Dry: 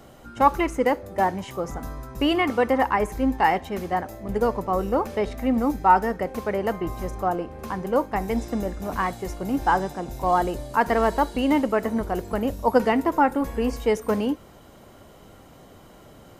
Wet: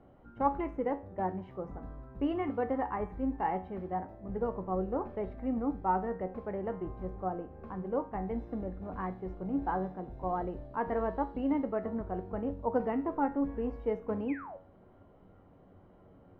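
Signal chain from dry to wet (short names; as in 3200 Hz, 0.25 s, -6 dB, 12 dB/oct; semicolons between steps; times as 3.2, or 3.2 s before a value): bell 5500 Hz -14.5 dB 2.9 oct; painted sound fall, 14.28–14.57, 500–2700 Hz -35 dBFS; air absorption 330 m; resonator 93 Hz, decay 0.38 s, harmonics all, mix 70%; gain -1.5 dB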